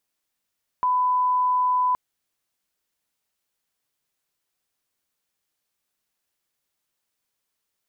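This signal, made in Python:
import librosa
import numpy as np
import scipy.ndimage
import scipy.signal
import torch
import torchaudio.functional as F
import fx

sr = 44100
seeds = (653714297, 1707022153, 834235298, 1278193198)

y = fx.lineup_tone(sr, length_s=1.12, level_db=-18.0)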